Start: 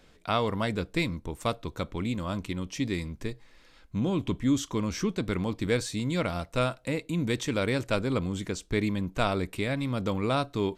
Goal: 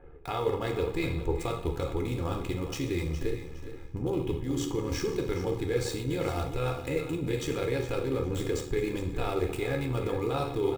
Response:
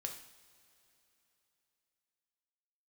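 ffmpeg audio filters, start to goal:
-filter_complex "[0:a]acrossover=split=1800[link_01][link_02];[link_02]acrusher=bits=6:mix=0:aa=0.000001[link_03];[link_01][link_03]amix=inputs=2:normalize=0,alimiter=limit=-23dB:level=0:latency=1:release=207,tiltshelf=frequency=1400:gain=3.5,bandreject=frequency=1300:width=27,aecho=1:1:413|826|1239:0.224|0.0627|0.0176[link_04];[1:a]atrim=start_sample=2205[link_05];[link_04][link_05]afir=irnorm=-1:irlink=0,tremolo=f=75:d=0.519,areverse,acompressor=threshold=-33dB:ratio=6,areverse,equalizer=frequency=2600:width_type=o:width=0.26:gain=3,aecho=1:1:2.4:0.73,volume=7dB"

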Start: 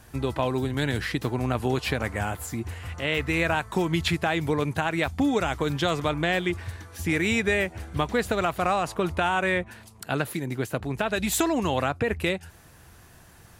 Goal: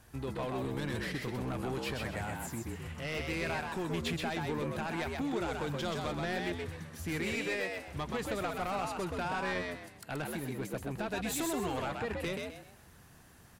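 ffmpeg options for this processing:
ffmpeg -i in.wav -filter_complex "[0:a]asettb=1/sr,asplit=3[link_01][link_02][link_03];[link_01]atrim=end=7.354[link_04];[link_02]atrim=start=7.35:end=7.88,asetpts=PTS-STARTPTS,afade=type=in:duration=0.004:curve=qsin,afade=type=out:start_time=0.526:duration=0.004:curve=qsin,highpass=230[link_05];[link_03]atrim=start=7.876[link_06];[link_04][link_05]acrossfade=duration=0.004:curve1=hsin:curve2=qsin[link_07];[link_07][link_06]acrossfade=duration=0.004:curve1=qsin:curve2=hsin,asoftclip=type=tanh:threshold=-22.5dB,asplit=5[link_08][link_09][link_10][link_11][link_12];[link_09]adelay=128,afreqshift=72,volume=-3.5dB[link_13];[link_10]adelay=256,afreqshift=144,volume=-13.7dB[link_14];[link_11]adelay=384,afreqshift=216,volume=-23.8dB[link_15];[link_12]adelay=512,afreqshift=288,volume=-34dB[link_16];[link_08][link_13][link_14][link_15][link_16]amix=inputs=5:normalize=0,volume=-8dB" out.wav

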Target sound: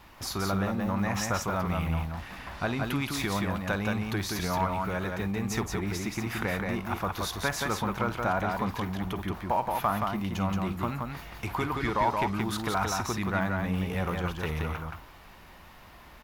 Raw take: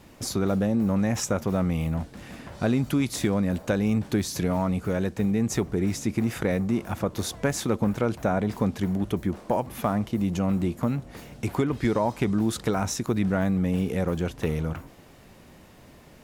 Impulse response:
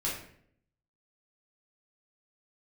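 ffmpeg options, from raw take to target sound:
-filter_complex "[0:a]equalizer=frequency=125:width_type=o:width=1:gain=-8,equalizer=frequency=250:width_type=o:width=1:gain=-9,equalizer=frequency=500:width_type=o:width=1:gain=-9,equalizer=frequency=1000:width_type=o:width=1:gain=5,equalizer=frequency=8000:width_type=o:width=1:gain=-10,asplit=2[link_01][link_02];[link_02]asoftclip=type=tanh:threshold=-32dB,volume=-10dB[link_03];[link_01][link_03]amix=inputs=2:normalize=0,aecho=1:1:51|175:0.188|0.668"

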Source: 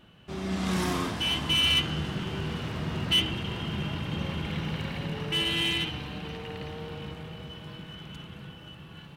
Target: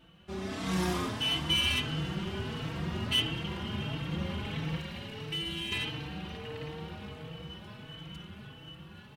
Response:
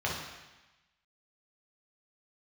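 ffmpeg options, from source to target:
-filter_complex "[0:a]asettb=1/sr,asplit=3[link_01][link_02][link_03];[link_01]atrim=end=4.784[link_04];[link_02]atrim=start=4.78:end=5.72,asetpts=PTS-STARTPTS,afade=type=in:duration=0.004:curve=qsin,afade=type=out:start_time=0.936:duration=0.004:curve=qsin,acrossover=split=320|2000[link_05][link_06][link_07];[link_05]acompressor=threshold=-37dB:ratio=4[link_08];[link_06]acompressor=threshold=-45dB:ratio=4[link_09];[link_07]acompressor=threshold=-35dB:ratio=4[link_10];[link_08][link_09][link_10]amix=inputs=3:normalize=0[link_11];[link_03]atrim=start=5.716[link_12];[link_04][link_11]acrossfade=duration=0.004:curve1=hsin:curve2=qsin[link_13];[link_13][link_12]acrossfade=duration=0.004:curve1=qsin:curve2=hsin,asplit=2[link_14][link_15];[link_15]adelay=4,afreqshift=1.5[link_16];[link_14][link_16]amix=inputs=2:normalize=1"

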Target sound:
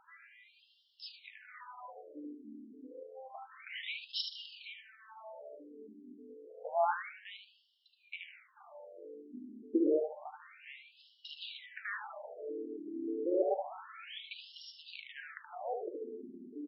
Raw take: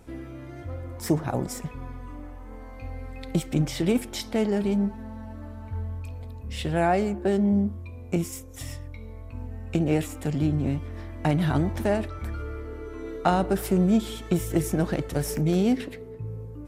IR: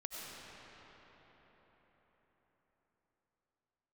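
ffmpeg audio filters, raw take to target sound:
-filter_complex "[0:a]aecho=1:1:75|150|225:0.501|0.13|0.0339,asplit=2[link_01][link_02];[1:a]atrim=start_sample=2205,asetrate=48510,aresample=44100[link_03];[link_02][link_03]afir=irnorm=-1:irlink=0,volume=-17.5dB[link_04];[link_01][link_04]amix=inputs=2:normalize=0,afftfilt=real='re*between(b*sr/1024,290*pow(4000/290,0.5+0.5*sin(2*PI*0.29*pts/sr))/1.41,290*pow(4000/290,0.5+0.5*sin(2*PI*0.29*pts/sr))*1.41)':imag='im*between(b*sr/1024,290*pow(4000/290,0.5+0.5*sin(2*PI*0.29*pts/sr))/1.41,290*pow(4000/290,0.5+0.5*sin(2*PI*0.29*pts/sr))*1.41)':win_size=1024:overlap=0.75,volume=-2dB"

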